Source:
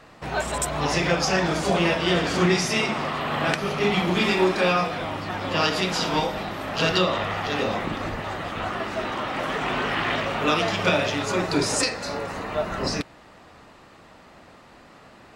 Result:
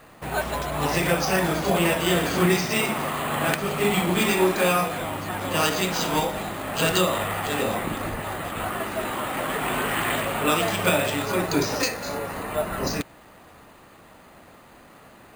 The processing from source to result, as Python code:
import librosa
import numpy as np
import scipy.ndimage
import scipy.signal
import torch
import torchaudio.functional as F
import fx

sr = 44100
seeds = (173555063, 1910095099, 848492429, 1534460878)

y = np.repeat(scipy.signal.resample_poly(x, 1, 4), 4)[:len(x)]